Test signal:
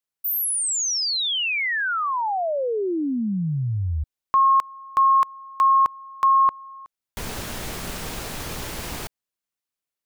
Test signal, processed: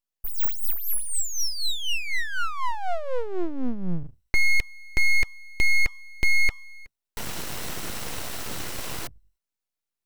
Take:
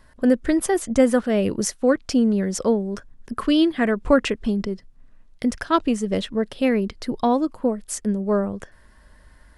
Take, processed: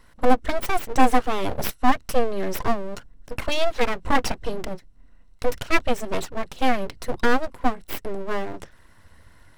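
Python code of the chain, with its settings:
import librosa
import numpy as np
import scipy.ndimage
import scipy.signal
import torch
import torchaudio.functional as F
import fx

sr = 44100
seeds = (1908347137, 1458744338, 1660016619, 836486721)

y = fx.ripple_eq(x, sr, per_octave=2.0, db=9)
y = np.abs(y)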